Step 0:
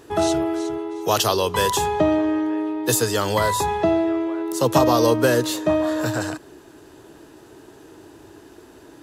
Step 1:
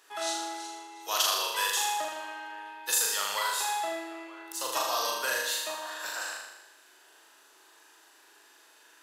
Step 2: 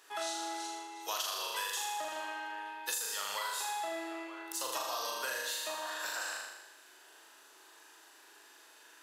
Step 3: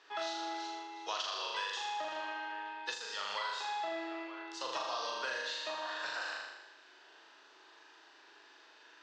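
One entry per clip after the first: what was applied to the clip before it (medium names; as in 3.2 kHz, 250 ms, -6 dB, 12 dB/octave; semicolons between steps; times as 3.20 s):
high-pass 1.3 kHz 12 dB/octave; flutter echo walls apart 6.8 m, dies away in 0.97 s; trim -6 dB
compression 6:1, threshold -34 dBFS, peak gain reduction 11.5 dB
inverse Chebyshev low-pass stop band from 11 kHz, stop band 50 dB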